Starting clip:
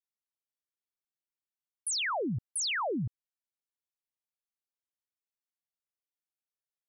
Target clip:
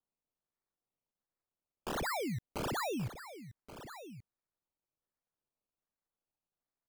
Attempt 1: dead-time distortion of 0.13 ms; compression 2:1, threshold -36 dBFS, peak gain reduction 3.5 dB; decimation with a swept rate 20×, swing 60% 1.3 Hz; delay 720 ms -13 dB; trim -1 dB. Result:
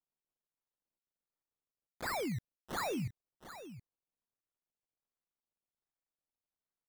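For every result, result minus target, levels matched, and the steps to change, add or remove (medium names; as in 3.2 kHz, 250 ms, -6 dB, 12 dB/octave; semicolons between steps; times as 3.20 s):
dead-time distortion: distortion +12 dB; echo 408 ms early
change: dead-time distortion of 0.031 ms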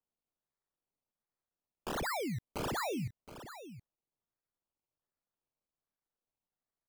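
echo 408 ms early
change: delay 1128 ms -13 dB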